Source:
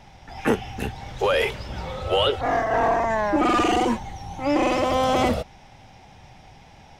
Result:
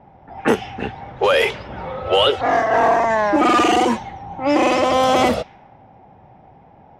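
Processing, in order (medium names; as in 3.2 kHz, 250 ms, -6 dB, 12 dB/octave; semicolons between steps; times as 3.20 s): level-controlled noise filter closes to 770 Hz, open at -16.5 dBFS; high-pass 220 Hz 6 dB/octave; trim +6 dB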